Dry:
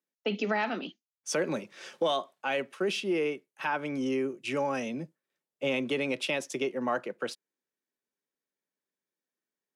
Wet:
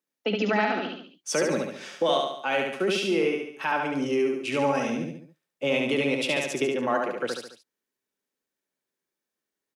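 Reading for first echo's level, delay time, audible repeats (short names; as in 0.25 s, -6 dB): -3.0 dB, 71 ms, 4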